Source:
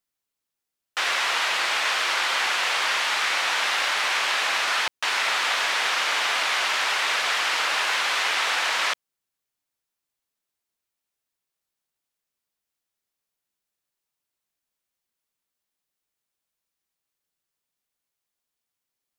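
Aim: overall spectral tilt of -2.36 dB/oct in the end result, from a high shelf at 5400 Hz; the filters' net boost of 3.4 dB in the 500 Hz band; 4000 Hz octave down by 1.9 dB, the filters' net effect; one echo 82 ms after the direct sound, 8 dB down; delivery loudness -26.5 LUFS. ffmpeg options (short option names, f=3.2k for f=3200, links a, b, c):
-af "equalizer=f=500:t=o:g=4.5,equalizer=f=4k:t=o:g=-5,highshelf=f=5.4k:g=6,aecho=1:1:82:0.398,volume=-4.5dB"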